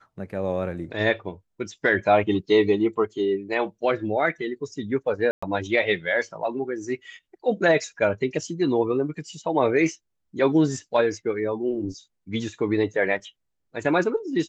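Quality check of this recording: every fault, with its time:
5.31–5.42 s: dropout 115 ms

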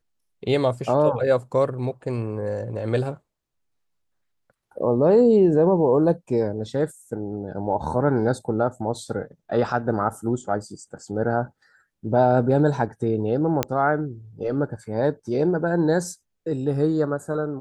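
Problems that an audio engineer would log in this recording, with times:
13.63 s: pop -6 dBFS

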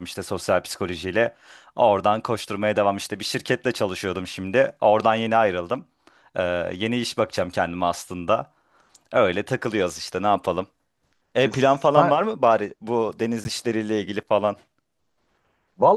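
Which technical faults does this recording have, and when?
13.44–13.45 s: dropout 10 ms

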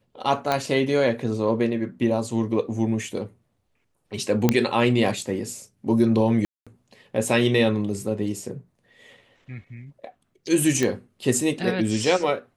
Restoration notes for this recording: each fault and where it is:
0.52 s: pop -9 dBFS
4.49 s: pop -4 dBFS
6.45–6.67 s: dropout 216 ms
10.83 s: pop -10 dBFS

